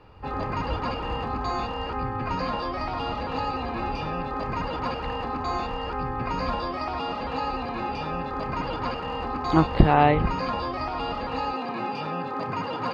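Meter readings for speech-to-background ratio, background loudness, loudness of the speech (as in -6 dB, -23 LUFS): 1.5 dB, -30.0 LUFS, -28.5 LUFS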